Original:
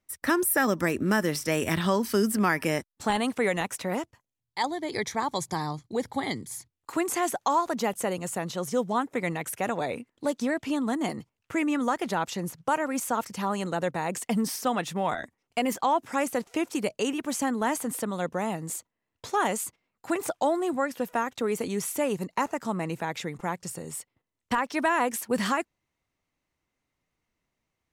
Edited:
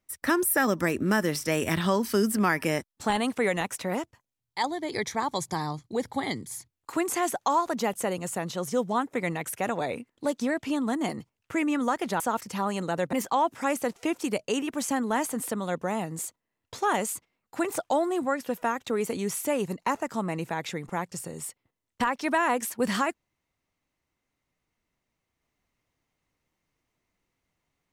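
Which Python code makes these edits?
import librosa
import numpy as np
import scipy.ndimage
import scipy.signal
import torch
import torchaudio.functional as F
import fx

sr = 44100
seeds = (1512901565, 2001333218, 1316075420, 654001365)

y = fx.edit(x, sr, fx.cut(start_s=12.2, length_s=0.84),
    fx.cut(start_s=13.97, length_s=1.67), tone=tone)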